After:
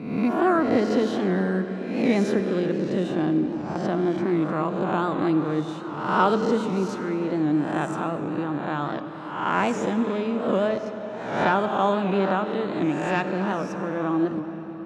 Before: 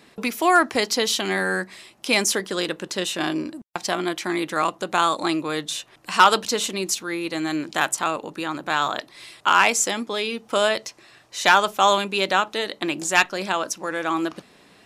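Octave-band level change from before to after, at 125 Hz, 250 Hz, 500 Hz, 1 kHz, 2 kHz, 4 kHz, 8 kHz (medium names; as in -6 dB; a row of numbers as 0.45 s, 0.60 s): +9.0 dB, +5.5 dB, +1.5 dB, -4.5 dB, -8.5 dB, -15.0 dB, -21.0 dB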